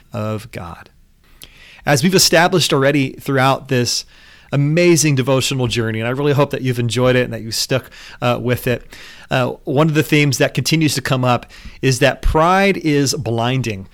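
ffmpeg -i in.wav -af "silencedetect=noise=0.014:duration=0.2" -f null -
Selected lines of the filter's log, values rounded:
silence_start: 0.87
silence_end: 1.32 | silence_duration: 0.46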